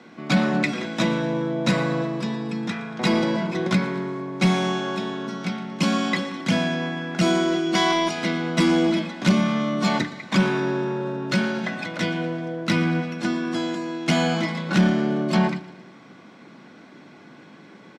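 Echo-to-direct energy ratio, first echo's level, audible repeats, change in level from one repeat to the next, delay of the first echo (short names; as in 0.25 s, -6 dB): -17.5 dB, -18.5 dB, 3, -6.0 dB, 0.116 s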